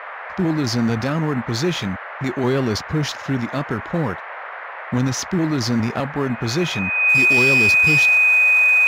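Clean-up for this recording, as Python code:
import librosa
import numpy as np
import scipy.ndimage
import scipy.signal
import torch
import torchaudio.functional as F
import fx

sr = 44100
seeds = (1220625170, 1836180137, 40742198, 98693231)

y = fx.fix_declip(x, sr, threshold_db=-11.0)
y = fx.notch(y, sr, hz=2500.0, q=30.0)
y = fx.noise_reduce(y, sr, print_start_s=4.42, print_end_s=4.92, reduce_db=30.0)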